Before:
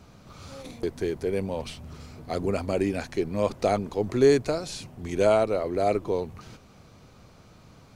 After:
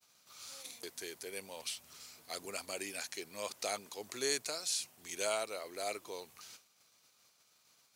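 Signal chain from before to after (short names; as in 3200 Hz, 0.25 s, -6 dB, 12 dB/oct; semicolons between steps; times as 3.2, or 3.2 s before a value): expander -45 dBFS; differentiator; gain +5 dB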